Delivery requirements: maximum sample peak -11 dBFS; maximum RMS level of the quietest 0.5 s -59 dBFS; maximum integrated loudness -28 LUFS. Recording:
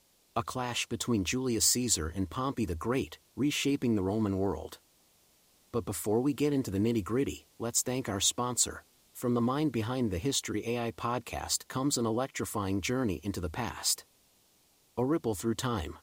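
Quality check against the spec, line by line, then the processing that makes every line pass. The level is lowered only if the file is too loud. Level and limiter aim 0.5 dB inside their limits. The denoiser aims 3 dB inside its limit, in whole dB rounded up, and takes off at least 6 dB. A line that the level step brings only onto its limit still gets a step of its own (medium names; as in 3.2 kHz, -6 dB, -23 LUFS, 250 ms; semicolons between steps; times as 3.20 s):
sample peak -13.0 dBFS: pass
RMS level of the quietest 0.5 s -67 dBFS: pass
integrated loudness -31.5 LUFS: pass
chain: none needed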